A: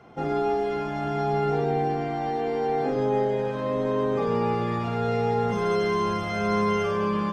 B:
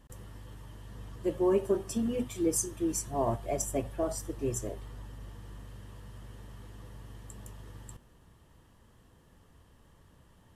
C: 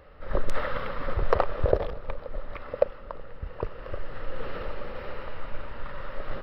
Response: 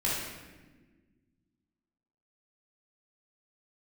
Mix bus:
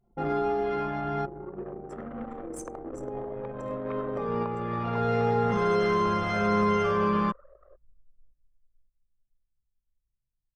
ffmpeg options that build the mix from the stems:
-filter_complex "[0:a]acrossover=split=470[link_01][link_02];[link_02]acompressor=threshold=-27dB:ratio=6[link_03];[link_01][link_03]amix=inputs=2:normalize=0,volume=0dB[link_04];[1:a]asoftclip=type=tanh:threshold=-19.5dB,volume=-9.5dB,afade=type=out:start_time=2.77:duration=0.58:silence=0.375837,asplit=3[link_05][link_06][link_07];[link_06]volume=-10.5dB[link_08];[2:a]highshelf=frequency=2600:gain=-7,acompressor=threshold=-26dB:ratio=6,adelay=1350,volume=-2dB,asplit=2[link_09][link_10];[link_10]volume=-22dB[link_11];[link_07]apad=whole_len=323036[link_12];[link_04][link_12]sidechaincompress=threshold=-51dB:ratio=10:attack=7.3:release=998[link_13];[link_05][link_09]amix=inputs=2:normalize=0,highpass=frequency=340:width=0.5412,highpass=frequency=340:width=1.3066,acompressor=threshold=-41dB:ratio=3,volume=0dB[link_14];[3:a]atrim=start_sample=2205[link_15];[link_08][link_15]afir=irnorm=-1:irlink=0[link_16];[link_11]aecho=0:1:562|1124|1686|2248|2810|3372:1|0.4|0.16|0.064|0.0256|0.0102[link_17];[link_13][link_14][link_16][link_17]amix=inputs=4:normalize=0,anlmdn=2.51,adynamicequalizer=threshold=0.00562:dfrequency=1300:dqfactor=2:tfrequency=1300:tqfactor=2:attack=5:release=100:ratio=0.375:range=2.5:mode=boostabove:tftype=bell"

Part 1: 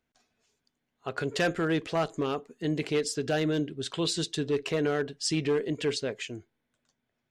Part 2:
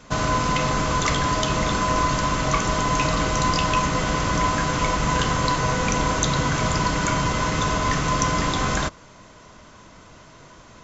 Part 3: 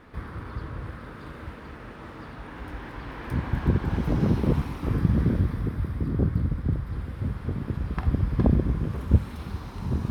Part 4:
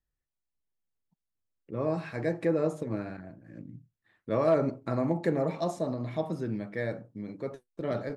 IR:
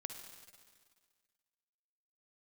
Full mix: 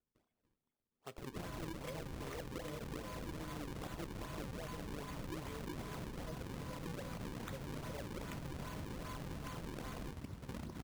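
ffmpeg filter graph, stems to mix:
-filter_complex "[0:a]lowpass=frequency=3300:width_type=q:width=11,acrossover=split=1000[link_01][link_02];[link_01]aeval=exprs='val(0)*(1-0.7/2+0.7/2*cos(2*PI*3*n/s))':channel_layout=same[link_03];[link_02]aeval=exprs='val(0)*(1-0.7/2-0.7/2*cos(2*PI*3*n/s))':channel_layout=same[link_04];[link_03][link_04]amix=inputs=2:normalize=0,volume=-9.5dB[link_05];[1:a]acompressor=threshold=-25dB:ratio=6,adelay=1250,volume=-12.5dB[link_06];[2:a]highpass=frequency=250:poles=1,aeval=exprs='0.106*(abs(mod(val(0)/0.106+3,4)-2)-1)':channel_layout=same,adelay=2100,volume=-14.5dB[link_07];[3:a]asplit=3[link_08][link_09][link_10];[link_08]bandpass=frequency=530:width_type=q:width=8,volume=0dB[link_11];[link_09]bandpass=frequency=1840:width_type=q:width=8,volume=-6dB[link_12];[link_10]bandpass=frequency=2480:width_type=q:width=8,volume=-9dB[link_13];[link_11][link_12][link_13]amix=inputs=3:normalize=0,adelay=100,volume=2dB,asplit=3[link_14][link_15][link_16];[link_14]atrim=end=4.67,asetpts=PTS-STARTPTS,afade=type=out:start_time=4.666:duration=0.004:curve=hsin[link_17];[link_15]atrim=start=4.67:end=6.15,asetpts=PTS-STARTPTS,volume=0[link_18];[link_16]atrim=start=6.15,asetpts=PTS-STARTPTS,afade=type=in:duration=0.004:curve=hsin[link_19];[link_17][link_18][link_19]concat=n=3:v=0:a=1[link_20];[link_05][link_07][link_20]amix=inputs=3:normalize=0,equalizer=frequency=2800:width_type=o:width=2.2:gain=-6,alimiter=level_in=5.5dB:limit=-24dB:level=0:latency=1:release=454,volume=-5.5dB,volume=0dB[link_21];[link_06][link_21]amix=inputs=2:normalize=0,acrossover=split=360|3000[link_22][link_23][link_24];[link_23]acompressor=threshold=-48dB:ratio=2[link_25];[link_22][link_25][link_24]amix=inputs=3:normalize=0,acrusher=samples=38:mix=1:aa=0.000001:lfo=1:lforange=60.8:lforate=2.5,acompressor=threshold=-41dB:ratio=6"

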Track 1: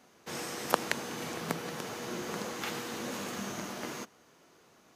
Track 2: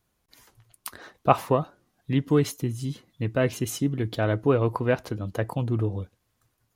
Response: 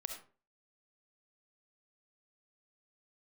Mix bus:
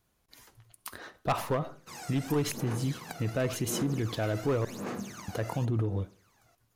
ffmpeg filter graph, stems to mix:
-filter_complex "[0:a]equalizer=frequency=3200:width_type=o:width=0.25:gain=-6.5,aphaser=in_gain=1:out_gain=1:delay=1.5:decay=0.79:speed=0.91:type=sinusoidal,adelay=1600,volume=-8.5dB[link_01];[1:a]asoftclip=type=hard:threshold=-16dB,volume=-2dB,asplit=3[link_02][link_03][link_04];[link_02]atrim=end=4.65,asetpts=PTS-STARTPTS,afade=type=out:start_time=4.646:duration=0.004:curve=hsin[link_05];[link_03]atrim=start=4.65:end=5.28,asetpts=PTS-STARTPTS,volume=0[link_06];[link_04]atrim=start=5.28,asetpts=PTS-STARTPTS,afade=type=in:duration=0.004:curve=hsin[link_07];[link_05][link_06][link_07]concat=n=3:v=0:a=1,asplit=2[link_08][link_09];[link_09]volume=-9.5dB[link_10];[2:a]atrim=start_sample=2205[link_11];[link_10][link_11]afir=irnorm=-1:irlink=0[link_12];[link_01][link_08][link_12]amix=inputs=3:normalize=0,alimiter=limit=-21.5dB:level=0:latency=1:release=51"

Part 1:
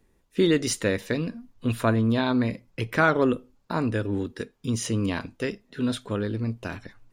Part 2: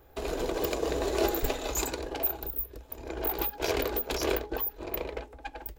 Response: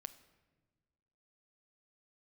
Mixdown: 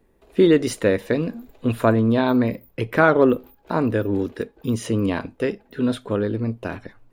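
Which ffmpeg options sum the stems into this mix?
-filter_complex "[0:a]equalizer=frequency=500:width_type=o:width=2.1:gain=6,volume=1.5dB[link_01];[1:a]acompressor=threshold=-30dB:ratio=6,adelay=50,volume=-18dB[link_02];[link_01][link_02]amix=inputs=2:normalize=0,equalizer=frequency=6200:width=1:gain=-7"

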